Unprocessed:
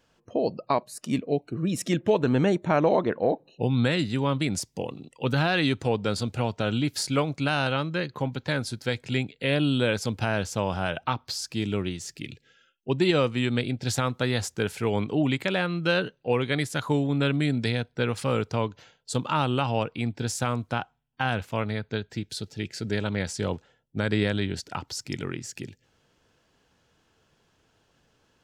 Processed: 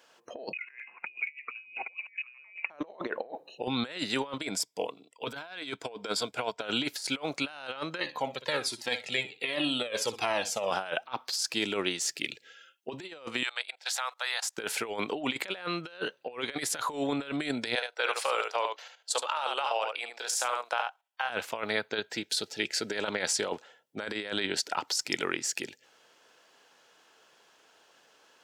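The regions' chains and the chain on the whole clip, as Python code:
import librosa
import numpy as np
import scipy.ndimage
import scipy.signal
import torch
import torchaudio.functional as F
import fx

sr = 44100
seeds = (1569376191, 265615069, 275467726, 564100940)

y = fx.chain(x, sr, fx.freq_invert(carrier_hz=2700),
    fx.band_squash(depth_pct=70), at=(0.53, 2.7))
y = fx.chain(y, sr, fx.ripple_eq(per_octave=1.7, db=7),
    fx.upward_expand(threshold_db=-44.0, expansion=1.5), at=(4.38, 6.62))
y = fx.chain(y, sr, fx.notch(hz=1500.0, q=6.7),
    fx.room_flutter(wall_m=10.4, rt60_s=0.27),
    fx.comb_cascade(direction='falling', hz=1.3), at=(8.0, 10.71))
y = fx.chain(y, sr, fx.cheby2_highpass(hz=210.0, order=4, stop_db=60),
    fx.level_steps(step_db=20), at=(13.43, 14.58))
y = fx.chain(y, sr, fx.highpass(hz=510.0, slope=24),
    fx.level_steps(step_db=11),
    fx.echo_single(ms=72, db=-7.0), at=(17.75, 21.3))
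y = scipy.signal.sosfilt(scipy.signal.butter(2, 520.0, 'highpass', fs=sr, output='sos'), y)
y = fx.over_compress(y, sr, threshold_db=-35.0, ratio=-0.5)
y = y * 10.0 ** (2.5 / 20.0)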